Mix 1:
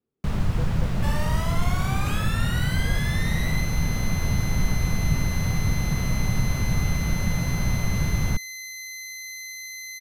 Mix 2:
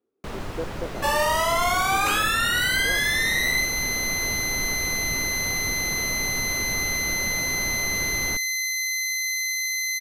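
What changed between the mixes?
speech +6.0 dB; second sound +10.5 dB; master: add resonant low shelf 230 Hz -11.5 dB, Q 1.5

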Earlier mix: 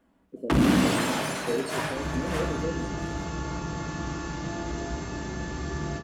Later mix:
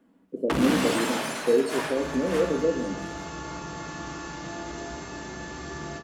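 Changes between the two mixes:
speech +10.5 dB; master: add low shelf 210 Hz -11 dB

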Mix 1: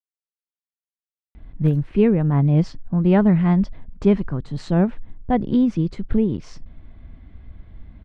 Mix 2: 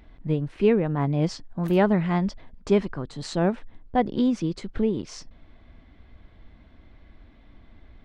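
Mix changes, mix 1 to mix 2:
speech: entry -1.35 s; master: add tone controls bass -10 dB, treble +9 dB

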